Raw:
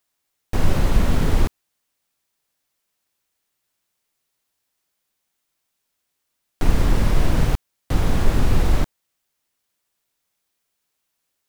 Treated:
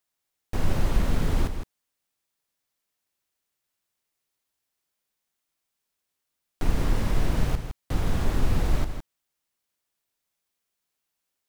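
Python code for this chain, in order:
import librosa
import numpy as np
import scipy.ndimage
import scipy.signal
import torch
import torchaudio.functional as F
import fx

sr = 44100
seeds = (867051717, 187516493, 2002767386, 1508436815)

y = x + 10.0 ** (-8.5 / 20.0) * np.pad(x, (int(161 * sr / 1000.0), 0))[:len(x)]
y = F.gain(torch.from_numpy(y), -6.5).numpy()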